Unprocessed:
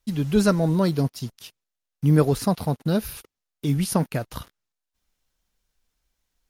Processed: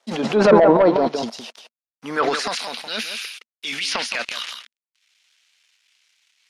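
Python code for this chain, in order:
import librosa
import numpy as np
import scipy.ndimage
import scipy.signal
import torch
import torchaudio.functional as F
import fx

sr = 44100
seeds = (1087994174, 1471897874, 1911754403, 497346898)

p1 = fx.peak_eq(x, sr, hz=470.0, db=8.0, octaves=1.6)
p2 = fx.quant_dither(p1, sr, seeds[0], bits=12, dither='none')
p3 = p2 + fx.echo_single(p2, sr, ms=168, db=-10.0, dry=0)
p4 = fx.filter_sweep_highpass(p3, sr, from_hz=690.0, to_hz=2400.0, start_s=1.71, end_s=2.66, q=1.8)
p5 = fx.level_steps(p4, sr, step_db=15)
p6 = p4 + (p5 * librosa.db_to_amplitude(-3.0))
p7 = fx.peak_eq(p6, sr, hz=230.0, db=14.0, octaves=0.43)
p8 = fx.rider(p7, sr, range_db=5, speed_s=2.0)
p9 = fx.env_lowpass_down(p8, sr, base_hz=1600.0, full_db=-13.0)
p10 = 10.0 ** (-10.5 / 20.0) * np.tanh(p9 / 10.0 ** (-10.5 / 20.0))
p11 = fx.transient(p10, sr, attack_db=-4, sustain_db=10)
p12 = scipy.signal.sosfilt(scipy.signal.butter(2, 6000.0, 'lowpass', fs=sr, output='sos'), p11)
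y = p12 * librosa.db_to_amplitude(5.0)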